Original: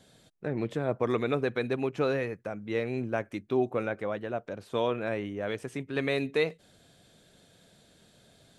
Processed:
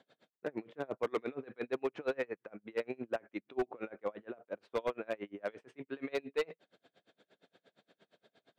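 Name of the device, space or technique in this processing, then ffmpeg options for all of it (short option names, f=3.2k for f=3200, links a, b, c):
helicopter radio: -af "highpass=310,lowpass=2.7k,aeval=exprs='val(0)*pow(10,-32*(0.5-0.5*cos(2*PI*8.6*n/s))/20)':c=same,asoftclip=type=hard:threshold=-28dB,volume=1.5dB"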